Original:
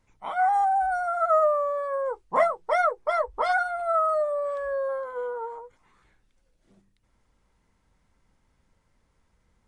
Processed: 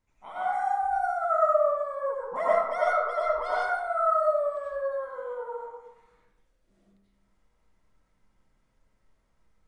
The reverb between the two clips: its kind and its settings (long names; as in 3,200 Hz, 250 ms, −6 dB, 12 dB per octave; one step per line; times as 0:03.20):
comb and all-pass reverb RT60 1 s, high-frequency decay 0.55×, pre-delay 55 ms, DRR −7 dB
level −10.5 dB